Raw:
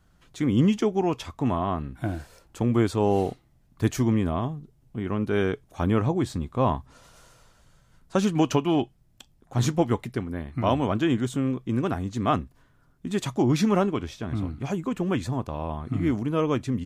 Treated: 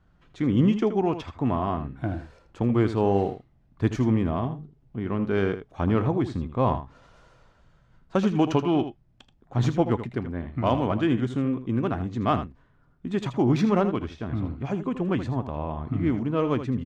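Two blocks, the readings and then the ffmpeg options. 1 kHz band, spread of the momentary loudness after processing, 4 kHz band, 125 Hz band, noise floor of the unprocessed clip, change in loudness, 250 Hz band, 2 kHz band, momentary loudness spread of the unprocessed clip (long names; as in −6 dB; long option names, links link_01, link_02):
0.0 dB, 10 LU, −3.5 dB, +0.5 dB, −62 dBFS, 0.0 dB, +0.5 dB, −1.0 dB, 10 LU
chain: -af "adynamicsmooth=sensitivity=1:basefreq=3400,aecho=1:1:80:0.282"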